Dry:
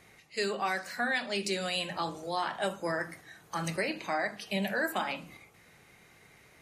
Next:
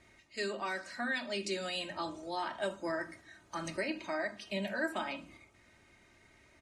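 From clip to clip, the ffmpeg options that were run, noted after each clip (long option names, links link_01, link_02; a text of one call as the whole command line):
ffmpeg -i in.wav -af "lowpass=frequency=9200:width=0.5412,lowpass=frequency=9200:width=1.3066,lowshelf=frequency=240:gain=6,aecho=1:1:3.2:0.63,volume=-6.5dB" out.wav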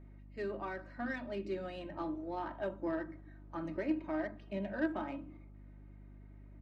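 ffmpeg -i in.wav -af "equalizer=frequency=300:width_type=o:width=0.26:gain=10.5,adynamicsmooth=sensitivity=1:basefreq=1200,aeval=exprs='val(0)+0.00282*(sin(2*PI*50*n/s)+sin(2*PI*2*50*n/s)/2+sin(2*PI*3*50*n/s)/3+sin(2*PI*4*50*n/s)/4+sin(2*PI*5*50*n/s)/5)':channel_layout=same,volume=-1.5dB" out.wav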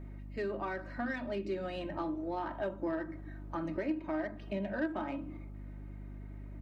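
ffmpeg -i in.wav -af "acompressor=threshold=-46dB:ratio=2,volume=8.5dB" out.wav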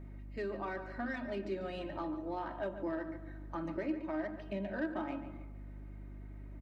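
ffmpeg -i in.wav -filter_complex "[0:a]asplit=2[link_01][link_02];[link_02]adelay=143,lowpass=frequency=3600:poles=1,volume=-10.5dB,asplit=2[link_03][link_04];[link_04]adelay=143,lowpass=frequency=3600:poles=1,volume=0.39,asplit=2[link_05][link_06];[link_06]adelay=143,lowpass=frequency=3600:poles=1,volume=0.39,asplit=2[link_07][link_08];[link_08]adelay=143,lowpass=frequency=3600:poles=1,volume=0.39[link_09];[link_01][link_03][link_05][link_07][link_09]amix=inputs=5:normalize=0,volume=-2.5dB" out.wav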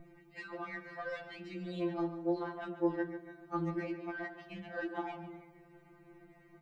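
ffmpeg -i in.wav -af "afftfilt=real='re*2.83*eq(mod(b,8),0)':imag='im*2.83*eq(mod(b,8),0)':win_size=2048:overlap=0.75,volume=4dB" out.wav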